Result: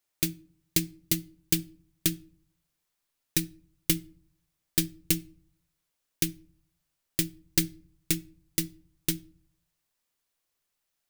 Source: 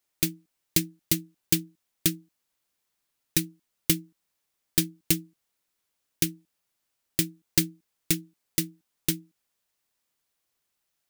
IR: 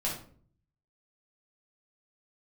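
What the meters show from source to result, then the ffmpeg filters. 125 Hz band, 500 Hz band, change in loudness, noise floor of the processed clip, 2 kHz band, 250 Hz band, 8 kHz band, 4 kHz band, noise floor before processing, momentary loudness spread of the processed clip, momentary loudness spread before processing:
-1.5 dB, -2.0 dB, -2.0 dB, -81 dBFS, -2.0 dB, -2.0 dB, -2.0 dB, -2.0 dB, -80 dBFS, 5 LU, 5 LU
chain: -filter_complex "[0:a]asplit=2[s0][s1];[s1]asubboost=boost=4:cutoff=84[s2];[1:a]atrim=start_sample=2205[s3];[s2][s3]afir=irnorm=-1:irlink=0,volume=0.0794[s4];[s0][s4]amix=inputs=2:normalize=0,volume=0.75"

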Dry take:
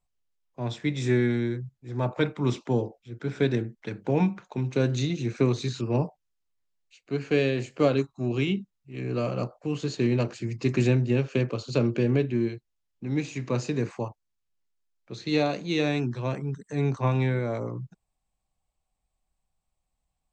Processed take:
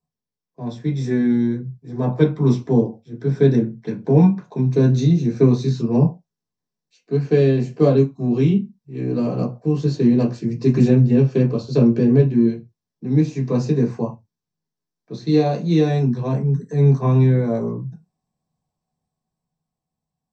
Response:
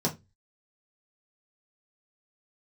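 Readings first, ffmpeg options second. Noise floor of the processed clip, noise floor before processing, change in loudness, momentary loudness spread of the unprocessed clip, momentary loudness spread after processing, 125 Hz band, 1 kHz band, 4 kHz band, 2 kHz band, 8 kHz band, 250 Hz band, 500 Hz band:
-85 dBFS, -81 dBFS, +9.0 dB, 11 LU, 12 LU, +10.0 dB, +4.0 dB, -1.5 dB, -3.0 dB, no reading, +10.0 dB, +7.5 dB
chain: -filter_complex "[0:a]dynaudnorm=f=150:g=17:m=1.68[s0];[1:a]atrim=start_sample=2205,atrim=end_sample=6615[s1];[s0][s1]afir=irnorm=-1:irlink=0,volume=0.282"

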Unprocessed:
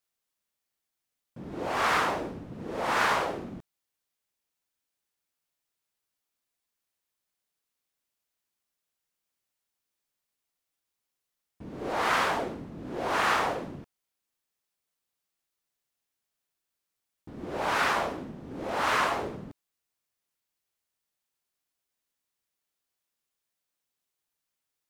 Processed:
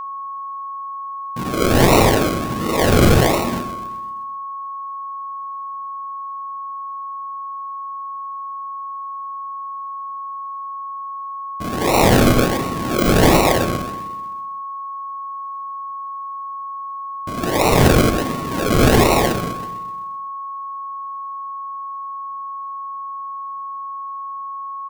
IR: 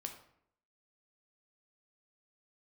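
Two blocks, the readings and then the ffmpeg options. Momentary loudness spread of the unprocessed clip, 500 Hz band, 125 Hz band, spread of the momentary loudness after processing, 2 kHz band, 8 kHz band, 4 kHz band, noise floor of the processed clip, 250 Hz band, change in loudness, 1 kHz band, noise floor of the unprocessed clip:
18 LU, +16.5 dB, +25.5 dB, 16 LU, +7.0 dB, +17.5 dB, +12.5 dB, -30 dBFS, +20.5 dB, +7.5 dB, +11.5 dB, -85 dBFS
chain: -filter_complex "[0:a]asplit=2[s0][s1];[s1]adelay=127,lowpass=f=1000:p=1,volume=0.398,asplit=2[s2][s3];[s3]adelay=127,lowpass=f=1000:p=1,volume=0.53,asplit=2[s4][s5];[s5]adelay=127,lowpass=f=1000:p=1,volume=0.53,asplit=2[s6][s7];[s7]adelay=127,lowpass=f=1000:p=1,volume=0.53,asplit=2[s8][s9];[s9]adelay=127,lowpass=f=1000:p=1,volume=0.53,asplit=2[s10][s11];[s11]adelay=127,lowpass=f=1000:p=1,volume=0.53[s12];[s0][s2][s4][s6][s8][s10][s12]amix=inputs=7:normalize=0,acrusher=samples=38:mix=1:aa=0.000001:lfo=1:lforange=22.8:lforate=1.4,asplit=2[s13][s14];[s14]highshelf=f=11000:g=4.5[s15];[1:a]atrim=start_sample=2205[s16];[s15][s16]afir=irnorm=-1:irlink=0,volume=1.68[s17];[s13][s17]amix=inputs=2:normalize=0,aeval=exprs='val(0)+0.0178*sin(2*PI*1100*n/s)':c=same,alimiter=level_in=3.55:limit=0.891:release=50:level=0:latency=1,volume=0.75"

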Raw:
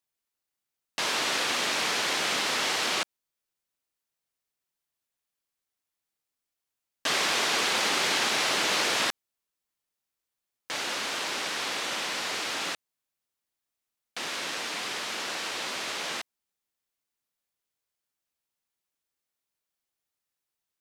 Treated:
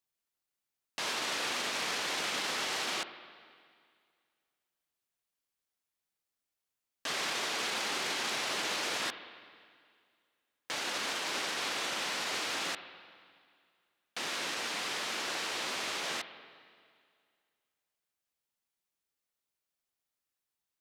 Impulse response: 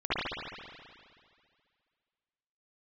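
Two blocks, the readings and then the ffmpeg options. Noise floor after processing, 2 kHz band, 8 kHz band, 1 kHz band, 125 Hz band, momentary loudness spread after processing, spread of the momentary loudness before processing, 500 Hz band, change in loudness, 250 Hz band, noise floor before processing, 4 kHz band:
under -85 dBFS, -6.0 dB, -6.0 dB, -6.0 dB, -6.0 dB, 9 LU, 10 LU, -6.0 dB, -6.0 dB, -6.0 dB, under -85 dBFS, -6.0 dB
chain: -filter_complex "[0:a]alimiter=limit=0.0708:level=0:latency=1:release=24,asplit=2[s0][s1];[1:a]atrim=start_sample=2205[s2];[s1][s2]afir=irnorm=-1:irlink=0,volume=0.0708[s3];[s0][s3]amix=inputs=2:normalize=0,volume=0.708"

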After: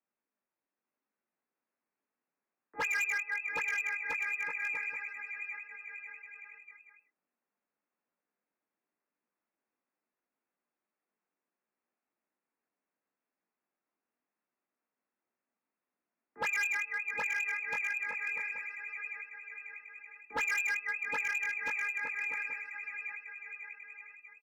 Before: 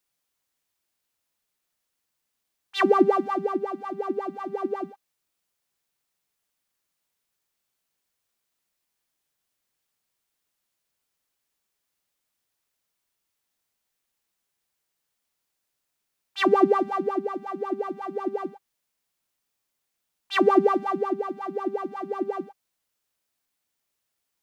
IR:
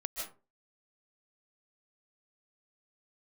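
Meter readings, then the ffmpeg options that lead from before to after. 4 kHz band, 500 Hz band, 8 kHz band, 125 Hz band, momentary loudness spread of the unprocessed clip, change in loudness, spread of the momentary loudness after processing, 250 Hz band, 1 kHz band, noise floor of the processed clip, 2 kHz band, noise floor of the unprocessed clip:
-11.5 dB, -27.0 dB, no reading, under -15 dB, 14 LU, -8.5 dB, 16 LU, -32.0 dB, -16.5 dB, under -85 dBFS, +6.5 dB, -81 dBFS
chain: -filter_complex "[0:a]lowpass=f=2400:t=q:w=0.5098,lowpass=f=2400:t=q:w=0.6013,lowpass=f=2400:t=q:w=0.9,lowpass=f=2400:t=q:w=2.563,afreqshift=-2800,acrossover=split=160 2200:gain=0.0891 1 0.158[s0][s1][s2];[s0][s1][s2]amix=inputs=3:normalize=0,asplit=2[s3][s4];[s4]asoftclip=type=tanh:threshold=0.0631,volume=0.447[s5];[s3][s5]amix=inputs=2:normalize=0,flanger=delay=16.5:depth=5.1:speed=0.75,equalizer=f=230:t=o:w=1.4:g=12.5,asplit=2[s6][s7];[s7]aecho=0:1:770|1309|1686|1950|2135:0.631|0.398|0.251|0.158|0.1[s8];[s6][s8]amix=inputs=2:normalize=0,asoftclip=type=hard:threshold=0.0708,volume=0.531"

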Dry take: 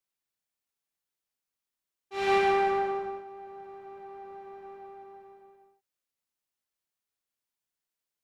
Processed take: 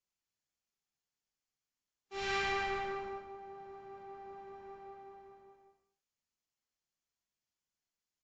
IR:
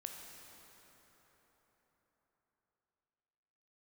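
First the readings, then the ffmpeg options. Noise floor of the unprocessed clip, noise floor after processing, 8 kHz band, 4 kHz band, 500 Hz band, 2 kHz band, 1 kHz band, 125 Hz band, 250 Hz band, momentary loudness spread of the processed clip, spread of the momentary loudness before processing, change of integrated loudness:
under -85 dBFS, under -85 dBFS, no reading, -2.0 dB, -12.0 dB, -4.0 dB, -10.5 dB, -3.0 dB, -11.5 dB, 19 LU, 21 LU, -12.0 dB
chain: -filter_complex "[0:a]bass=f=250:g=6,treble=f=4000:g=5,bandreject=f=3800:w=15,acrossover=split=130|1200[s0][s1][s2];[s1]asoftclip=type=tanh:threshold=0.0237[s3];[s0][s3][s2]amix=inputs=3:normalize=0[s4];[1:a]atrim=start_sample=2205,afade=t=out:st=0.34:d=0.01,atrim=end_sample=15435,asetrate=61740,aresample=44100[s5];[s4][s5]afir=irnorm=-1:irlink=0,aresample=16000,aresample=44100,volume=1.41" -ar 22050 -c:a aac -b:a 96k

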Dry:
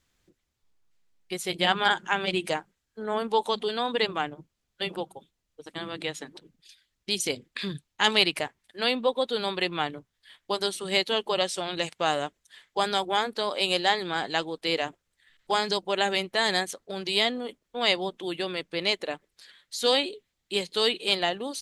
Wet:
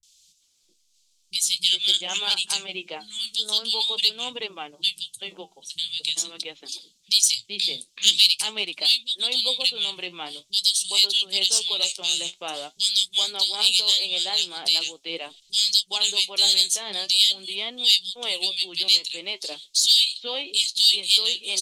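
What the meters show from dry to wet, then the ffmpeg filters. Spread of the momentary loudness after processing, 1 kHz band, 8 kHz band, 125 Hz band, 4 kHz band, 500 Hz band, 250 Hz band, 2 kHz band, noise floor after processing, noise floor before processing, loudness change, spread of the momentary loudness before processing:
15 LU, -10.5 dB, +14.5 dB, under -10 dB, +10.0 dB, -10.5 dB, -11.5 dB, -4.0 dB, -65 dBFS, -80 dBFS, +7.0 dB, 12 LU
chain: -filter_complex "[0:a]lowpass=8300,acrossover=split=160|2100[s0][s1][s2];[s2]adelay=30[s3];[s1]adelay=410[s4];[s0][s4][s3]amix=inputs=3:normalize=0,aexciter=amount=13.4:drive=8.9:freq=2800,asplit=2[s5][s6];[s6]acompressor=threshold=0.141:ratio=6,volume=1.41[s7];[s5][s7]amix=inputs=2:normalize=0,flanger=delay=2.5:depth=9.5:regen=63:speed=0.45:shape=triangular,volume=0.282"

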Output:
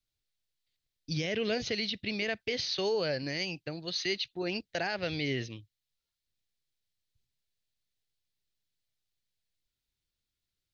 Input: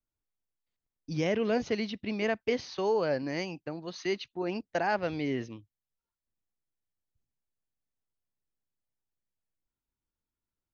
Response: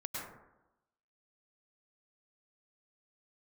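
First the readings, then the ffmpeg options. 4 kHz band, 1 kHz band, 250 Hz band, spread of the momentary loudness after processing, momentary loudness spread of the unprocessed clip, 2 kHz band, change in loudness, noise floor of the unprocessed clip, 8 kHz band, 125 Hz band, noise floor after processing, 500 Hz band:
+8.5 dB, -7.0 dB, -4.0 dB, 6 LU, 9 LU, +1.5 dB, -1.0 dB, under -85 dBFS, no reading, +0.5 dB, under -85 dBFS, -3.5 dB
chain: -af "equalizer=f=125:t=o:w=1:g=3,equalizer=f=250:t=o:w=1:g=-6,equalizer=f=1000:t=o:w=1:g=-10,equalizer=f=2000:t=o:w=1:g=3,equalizer=f=4000:t=o:w=1:g=11,alimiter=limit=0.0631:level=0:latency=1:release=61,volume=1.26"

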